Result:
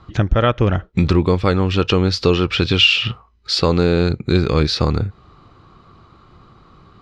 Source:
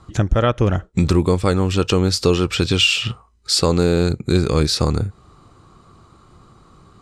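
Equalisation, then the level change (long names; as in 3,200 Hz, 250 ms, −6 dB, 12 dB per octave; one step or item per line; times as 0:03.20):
high-frequency loss of the air 280 metres
high-shelf EQ 2,100 Hz +11 dB
+1.0 dB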